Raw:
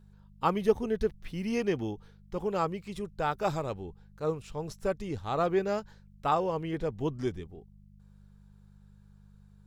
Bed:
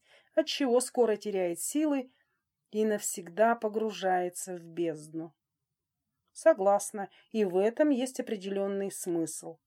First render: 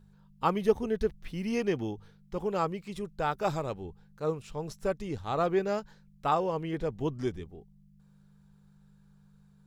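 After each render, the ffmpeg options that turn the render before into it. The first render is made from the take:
-af "bandreject=f=50:t=h:w=4,bandreject=f=100:t=h:w=4"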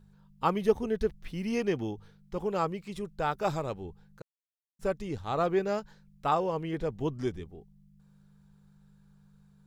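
-filter_complex "[0:a]asplit=3[a][b][c];[a]atrim=end=4.22,asetpts=PTS-STARTPTS,afade=t=out:st=4.216:d=0.004:c=hsin[d];[b]atrim=start=4.22:end=4.79,asetpts=PTS-STARTPTS,volume=0[e];[c]atrim=start=4.79,asetpts=PTS-STARTPTS,afade=t=in:d=0.004:c=hsin[f];[d][e][f]concat=n=3:v=0:a=1"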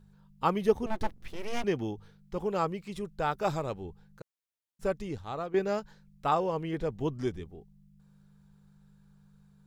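-filter_complex "[0:a]asettb=1/sr,asplit=3[a][b][c];[a]atrim=end=0.864[d];[b]atrim=start=0.86:end=1.64,asetpts=PTS-STARTPTS,afade=t=in:d=0.004:c=qsin,afade=t=out:st=0.776:d=0.004:c=qsin,aeval=exprs='abs(val(0))':c=same[e];[c]atrim=start=1.636[f];[d][e]acrossfade=d=0.004:c1=hsin:c2=qsin[g];[g][f]acrossfade=d=0.004:c1=qsin:c2=hsin,asplit=2[h][i];[h]atrim=end=5.54,asetpts=PTS-STARTPTS,afade=t=out:st=5.02:d=0.52:silence=0.211349[j];[i]atrim=start=5.54,asetpts=PTS-STARTPTS,afade=t=in:d=0.004:c=hsin:silence=0.211349[k];[j][k]concat=n=2:v=0:a=1"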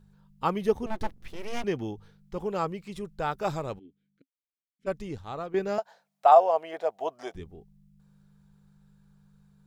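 -filter_complex "[0:a]asplit=3[a][b][c];[a]afade=t=out:st=3.78:d=0.02[d];[b]asplit=3[e][f][g];[e]bandpass=f=270:t=q:w=8,volume=0dB[h];[f]bandpass=f=2.29k:t=q:w=8,volume=-6dB[i];[g]bandpass=f=3.01k:t=q:w=8,volume=-9dB[j];[h][i][j]amix=inputs=3:normalize=0,afade=t=in:st=3.78:d=0.02,afade=t=out:st=4.86:d=0.02[k];[c]afade=t=in:st=4.86:d=0.02[l];[d][k][l]amix=inputs=3:normalize=0,asettb=1/sr,asplit=3[m][n][o];[m]atrim=end=5.784[p];[n]atrim=start=5.78:end=7.35,asetpts=PTS-STARTPTS,afade=t=in:d=0.004:c=qsin,afade=t=out:st=1.566:d=0.004:c=qsin,highpass=f=680:t=q:w=8.3[q];[o]atrim=start=7.346[r];[p][q]acrossfade=d=0.004:c1=hsin:c2=qsin[s];[s][r]acrossfade=d=0.004:c1=qsin:c2=hsin"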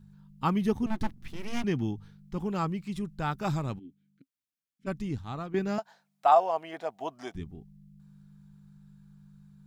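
-af "equalizer=f=125:t=o:w=1:g=6,equalizer=f=250:t=o:w=1:g=7,equalizer=f=500:t=o:w=1:g=-10"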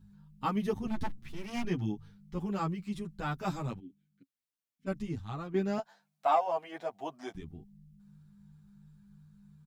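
-filter_complex "[0:a]asoftclip=type=tanh:threshold=-10.5dB,asplit=2[a][b];[b]adelay=8.7,afreqshift=2.9[c];[a][c]amix=inputs=2:normalize=1"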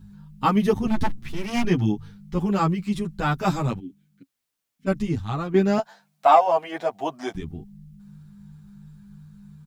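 -af "volume=11.5dB"

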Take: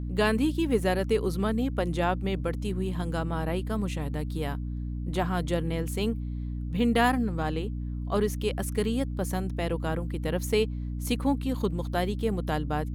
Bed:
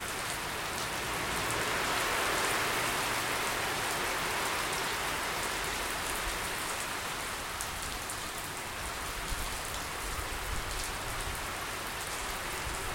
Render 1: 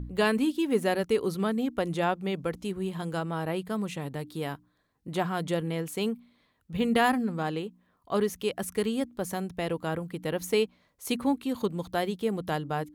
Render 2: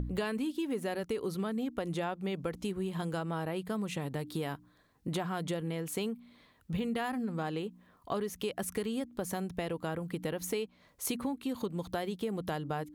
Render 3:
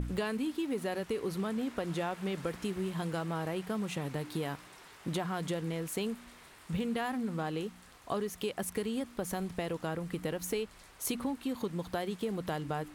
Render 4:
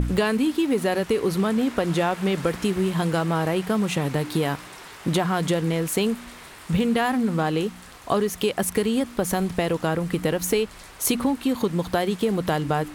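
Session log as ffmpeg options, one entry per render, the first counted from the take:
-af "bandreject=f=60:t=h:w=4,bandreject=f=120:t=h:w=4,bandreject=f=180:t=h:w=4,bandreject=f=240:t=h:w=4,bandreject=f=300:t=h:w=4"
-filter_complex "[0:a]asplit=2[a][b];[b]alimiter=limit=-22dB:level=0:latency=1:release=16,volume=-0.5dB[c];[a][c]amix=inputs=2:normalize=0,acompressor=threshold=-32dB:ratio=6"
-filter_complex "[1:a]volume=-21dB[a];[0:a][a]amix=inputs=2:normalize=0"
-af "volume=12dB"

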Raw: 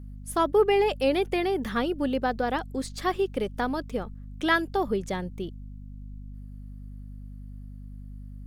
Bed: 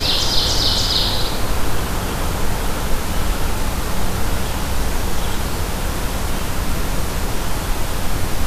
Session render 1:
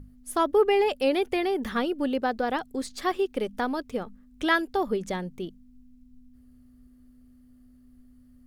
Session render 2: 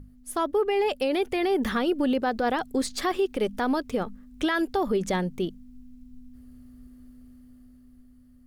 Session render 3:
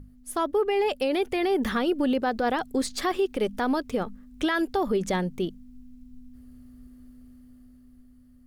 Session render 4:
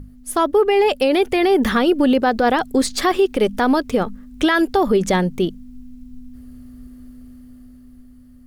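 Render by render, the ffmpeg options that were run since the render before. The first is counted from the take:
-af "bandreject=f=50:t=h:w=6,bandreject=f=100:t=h:w=6,bandreject=f=150:t=h:w=6,bandreject=f=200:t=h:w=6"
-af "dynaudnorm=f=220:g=11:m=6.5dB,alimiter=limit=-17dB:level=0:latency=1:release=50"
-af anull
-af "volume=9dB"

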